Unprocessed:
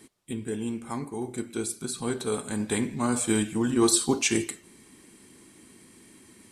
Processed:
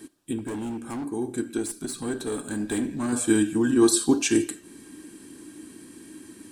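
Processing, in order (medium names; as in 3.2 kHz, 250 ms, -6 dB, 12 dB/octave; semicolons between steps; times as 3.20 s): treble shelf 10 kHz +4 dB; band-stop 2.1 kHz, Q 7.5; in parallel at -1.5 dB: compression, threshold -39 dBFS, peak gain reduction 21 dB; 1.57–3.13 s: on the sum: valve stage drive 21 dB, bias 0.4; small resonant body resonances 300/1600 Hz, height 14 dB, ringing for 65 ms; 0.38–1.06 s: overload inside the chain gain 26.5 dB; on a send at -23.5 dB: reverberation, pre-delay 30 ms; on the sum: trim -2.5 dB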